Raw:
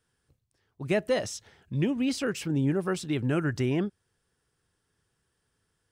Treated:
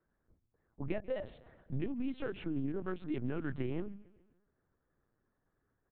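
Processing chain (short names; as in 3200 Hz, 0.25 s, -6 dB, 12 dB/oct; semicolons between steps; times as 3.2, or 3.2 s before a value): Wiener smoothing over 15 samples; low shelf 61 Hz -4.5 dB; notches 50/100/150/200 Hz; compressor 6:1, threshold -33 dBFS, peak gain reduction 11.5 dB; air absorption 190 m; feedback echo 0.143 s, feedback 51%, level -21 dB; LPC vocoder at 8 kHz pitch kept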